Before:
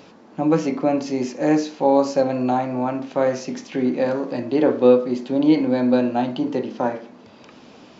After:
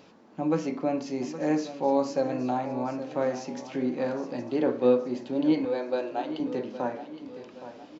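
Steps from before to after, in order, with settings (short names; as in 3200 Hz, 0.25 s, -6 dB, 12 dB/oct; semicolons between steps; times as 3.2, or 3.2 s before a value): 5.65–6.4 brick-wall FIR high-pass 270 Hz; on a send: feedback echo 0.817 s, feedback 45%, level -13 dB; on the sum: gain -8 dB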